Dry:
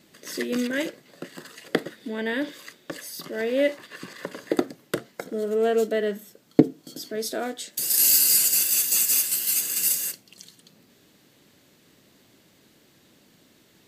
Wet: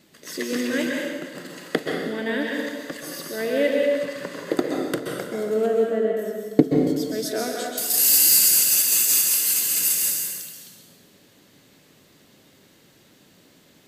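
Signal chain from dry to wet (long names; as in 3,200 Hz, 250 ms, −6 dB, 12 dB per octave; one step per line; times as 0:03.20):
0:05.66–0:06.17: head-to-tape spacing loss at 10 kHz 44 dB
dense smooth reverb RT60 1.6 s, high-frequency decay 0.8×, pre-delay 115 ms, DRR −1 dB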